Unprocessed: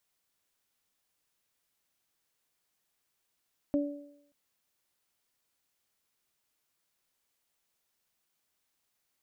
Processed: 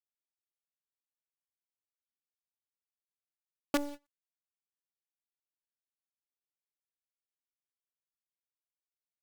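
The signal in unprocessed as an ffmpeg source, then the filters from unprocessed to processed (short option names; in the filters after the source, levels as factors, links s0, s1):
-f lavfi -i "aevalsrc='0.0668*pow(10,-3*t/0.7)*sin(2*PI*288*t)+0.0335*pow(10,-3*t/0.79)*sin(2*PI*576*t)':d=0.58:s=44100"
-af "acrusher=bits=5:dc=4:mix=0:aa=0.000001,agate=range=0.0355:threshold=0.00794:ratio=16:detection=peak"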